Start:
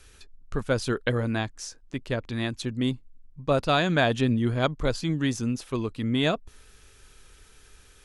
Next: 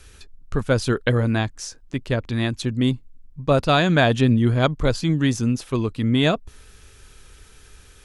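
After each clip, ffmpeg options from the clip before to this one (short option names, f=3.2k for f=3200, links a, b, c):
-af "equalizer=f=86:t=o:w=2.4:g=4,volume=4.5dB"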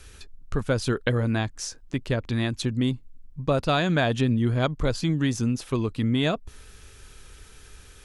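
-af "acompressor=threshold=-23dB:ratio=2"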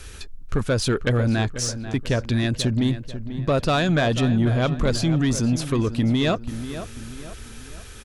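-filter_complex "[0:a]asplit=2[a][b];[b]alimiter=limit=-21dB:level=0:latency=1:release=32,volume=3dB[c];[a][c]amix=inputs=2:normalize=0,asoftclip=type=tanh:threshold=-13dB,asplit=2[d][e];[e]adelay=490,lowpass=f=2.9k:p=1,volume=-11.5dB,asplit=2[f][g];[g]adelay=490,lowpass=f=2.9k:p=1,volume=0.44,asplit=2[h][i];[i]adelay=490,lowpass=f=2.9k:p=1,volume=0.44,asplit=2[j][k];[k]adelay=490,lowpass=f=2.9k:p=1,volume=0.44[l];[d][f][h][j][l]amix=inputs=5:normalize=0"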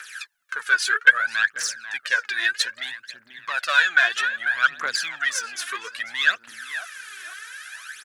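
-af "aphaser=in_gain=1:out_gain=1:delay=2.9:decay=0.72:speed=0.62:type=triangular,highpass=f=1.6k:t=q:w=5.2,volume=-2dB"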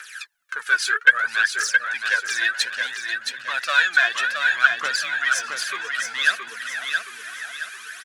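-af "aecho=1:1:670|1340|2010|2680|3350:0.562|0.214|0.0812|0.0309|0.0117"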